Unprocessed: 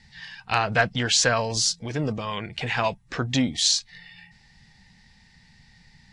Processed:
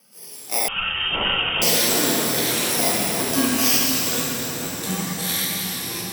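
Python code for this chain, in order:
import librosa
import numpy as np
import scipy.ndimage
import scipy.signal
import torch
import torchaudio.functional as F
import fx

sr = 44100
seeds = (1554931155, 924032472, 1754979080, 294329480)

y = fx.bit_reversed(x, sr, seeds[0], block=32)
y = scipy.signal.sosfilt(scipy.signal.butter(4, 240.0, 'highpass', fs=sr, output='sos'), y)
y = fx.rev_plate(y, sr, seeds[1], rt60_s=4.5, hf_ratio=0.65, predelay_ms=0, drr_db=-5.0)
y = fx.echo_pitch(y, sr, ms=120, semitones=-6, count=3, db_per_echo=-6.0)
y = fx.vibrato(y, sr, rate_hz=2.2, depth_cents=18.0)
y = fx.freq_invert(y, sr, carrier_hz=3400, at=(0.68, 1.62))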